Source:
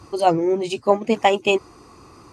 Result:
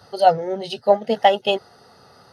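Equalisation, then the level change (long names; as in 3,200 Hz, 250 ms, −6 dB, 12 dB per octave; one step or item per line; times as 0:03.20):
high-pass filter 180 Hz 12 dB per octave
phaser with its sweep stopped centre 1,600 Hz, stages 8
+4.0 dB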